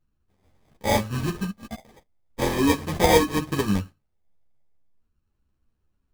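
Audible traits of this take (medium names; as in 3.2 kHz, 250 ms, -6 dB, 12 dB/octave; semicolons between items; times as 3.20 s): a buzz of ramps at a fixed pitch in blocks of 16 samples; phasing stages 6, 0.39 Hz, lowest notch 300–1200 Hz; aliases and images of a low sample rate 1.4 kHz, jitter 0%; a shimmering, thickened sound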